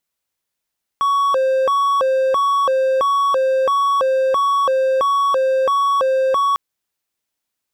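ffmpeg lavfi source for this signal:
ffmpeg -f lavfi -i "aevalsrc='0.266*(1-4*abs(mod((823.5*t+296.5/1.5*(0.5-abs(mod(1.5*t,1)-0.5)))+0.25,1)-0.5))':duration=5.55:sample_rate=44100" out.wav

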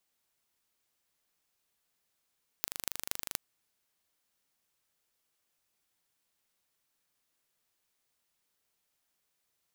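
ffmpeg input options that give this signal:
ffmpeg -f lavfi -i "aevalsrc='0.668*eq(mod(n,1743),0)*(0.5+0.5*eq(mod(n,10458),0))':duration=0.75:sample_rate=44100" out.wav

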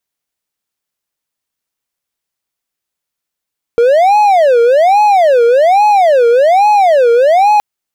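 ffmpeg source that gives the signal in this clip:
ffmpeg -f lavfi -i "aevalsrc='0.708*(1-4*abs(mod((655*t-189/(2*PI*1.2)*sin(2*PI*1.2*t))+0.25,1)-0.5))':duration=3.82:sample_rate=44100" out.wav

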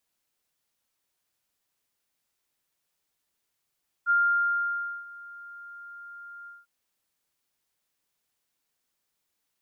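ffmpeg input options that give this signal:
ffmpeg -f lavfi -i "aevalsrc='0.119*sin(2*PI*1400*t)':duration=2.599:sample_rate=44100,afade=type=in:duration=0.042,afade=type=out:start_time=0.042:duration=0.942:silence=0.075,afade=type=out:start_time=2.41:duration=0.189" out.wav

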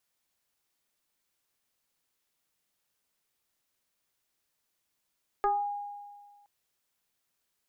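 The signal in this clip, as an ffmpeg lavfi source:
ffmpeg -f lavfi -i "aevalsrc='0.0794*pow(10,-3*t/1.66)*sin(2*PI*817*t+1.3*pow(10,-3*t/0.37)*sin(2*PI*0.51*817*t))':duration=1.02:sample_rate=44100" out.wav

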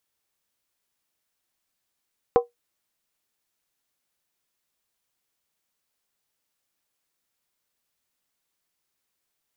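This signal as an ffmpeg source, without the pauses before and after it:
ffmpeg -f lavfi -i "aevalsrc='0.335*pow(10,-3*t/0.15)*sin(2*PI*478*t)+0.158*pow(10,-3*t/0.119)*sin(2*PI*761.9*t)+0.075*pow(10,-3*t/0.103)*sin(2*PI*1021*t)+0.0355*pow(10,-3*t/0.099)*sin(2*PI*1097.5*t)+0.0168*pow(10,-3*t/0.092)*sin(2*PI*1268.1*t)':duration=0.63:sample_rate=44100" out.wav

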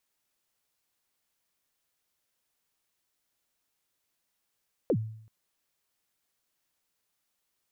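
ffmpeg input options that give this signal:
ffmpeg -f lavfi -i "aevalsrc='0.1*pow(10,-3*t/0.66)*sin(2*PI*(580*0.067/log(110/580)*(exp(log(110/580)*min(t,0.067)/0.067)-1)+110*max(t-0.067,0)))':duration=0.38:sample_rate=44100" out.wav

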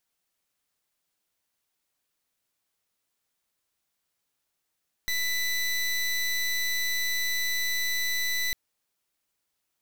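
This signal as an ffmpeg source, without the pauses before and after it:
ffmpeg -f lavfi -i "aevalsrc='0.0422*(2*lt(mod(1990*t,1),0.22)-1)':duration=3.45:sample_rate=44100" out.wav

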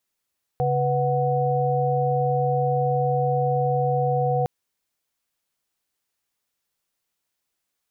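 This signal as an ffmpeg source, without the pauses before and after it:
ffmpeg -f lavfi -i "aevalsrc='0.0668*(sin(2*PI*138.59*t)+sin(2*PI*493.88*t)+sin(2*PI*739.99*t))':duration=3.86:sample_rate=44100" out.wav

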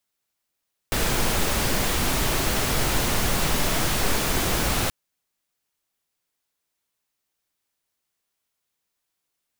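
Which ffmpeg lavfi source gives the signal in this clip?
ffmpeg -f lavfi -i "anoisesrc=color=pink:amplitude=0.385:duration=3.98:sample_rate=44100:seed=1" out.wav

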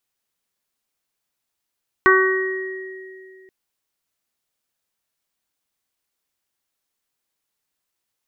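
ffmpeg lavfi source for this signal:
ffmpeg -f lavfi -i "aevalsrc='0.2*pow(10,-3*t/2.64)*sin(2*PI*378*t)+0.0224*pow(10,-3*t/0.79)*sin(2*PI*756*t)+0.224*pow(10,-3*t/0.9)*sin(2*PI*1134*t)+0.178*pow(10,-3*t/0.83)*sin(2*PI*1512*t)+0.2*pow(10,-3*t/2.19)*sin(2*PI*1890*t)':duration=1.43:sample_rate=44100" out.wav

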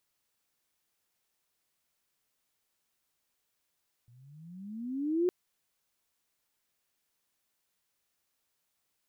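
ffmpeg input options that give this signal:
ffmpeg -f lavfi -i "aevalsrc='pow(10,(-23+33*(t/1.21-1))/20)*sin(2*PI*116*1.21/(20*log(2)/12)*(exp(20*log(2)/12*t/1.21)-1))':duration=1.21:sample_rate=44100" out.wav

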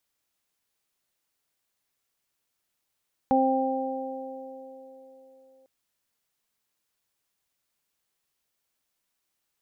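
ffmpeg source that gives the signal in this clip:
ffmpeg -f lavfi -i "aevalsrc='0.0794*pow(10,-3*t/3.03)*sin(2*PI*264*t)+0.0668*pow(10,-3*t/4.29)*sin(2*PI*528*t)+0.0944*pow(10,-3*t/2.75)*sin(2*PI*792*t)':duration=2.35:sample_rate=44100" out.wav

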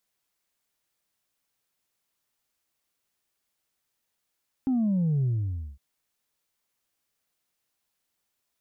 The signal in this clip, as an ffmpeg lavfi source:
ffmpeg -f lavfi -i "aevalsrc='0.0794*clip((1.11-t)/0.54,0,1)*tanh(1.12*sin(2*PI*270*1.11/log(65/270)*(exp(log(65/270)*t/1.11)-1)))/tanh(1.12)':duration=1.11:sample_rate=44100" out.wav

